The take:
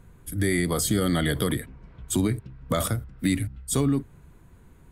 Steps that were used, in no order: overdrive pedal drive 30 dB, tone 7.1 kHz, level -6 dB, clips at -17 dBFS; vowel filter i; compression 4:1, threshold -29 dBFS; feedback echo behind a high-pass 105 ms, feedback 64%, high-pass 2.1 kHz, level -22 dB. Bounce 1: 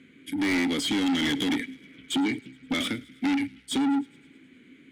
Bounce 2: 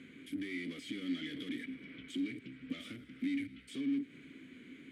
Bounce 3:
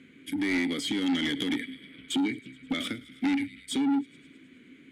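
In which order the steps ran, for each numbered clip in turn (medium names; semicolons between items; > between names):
vowel filter > compression > overdrive pedal > feedback echo behind a high-pass; overdrive pedal > feedback echo behind a high-pass > compression > vowel filter; feedback echo behind a high-pass > compression > vowel filter > overdrive pedal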